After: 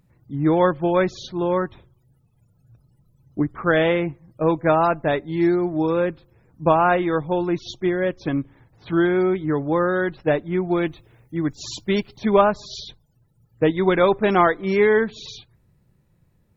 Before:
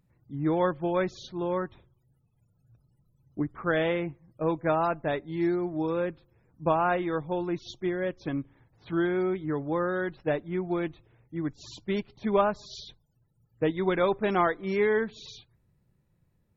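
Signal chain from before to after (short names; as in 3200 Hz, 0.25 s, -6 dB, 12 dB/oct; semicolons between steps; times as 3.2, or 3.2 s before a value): 10.76–12.33 high shelf 5700 Hz +12 dB; gain +8 dB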